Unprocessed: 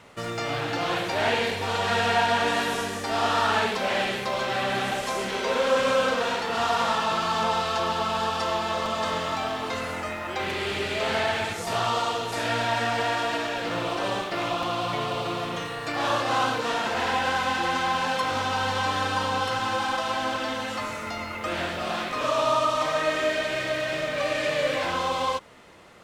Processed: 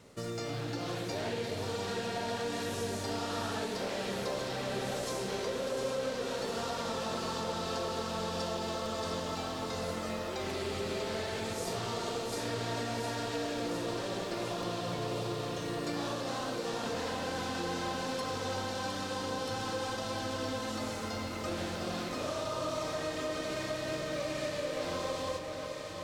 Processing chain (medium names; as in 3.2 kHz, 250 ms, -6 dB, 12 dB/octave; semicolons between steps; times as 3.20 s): high-order bell 1.5 kHz -9 dB 2.6 oct; compression, threshold -31 dBFS, peak gain reduction 11 dB; echo whose repeats swap between lows and highs 355 ms, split 1 kHz, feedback 87%, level -6 dB; trim -2.5 dB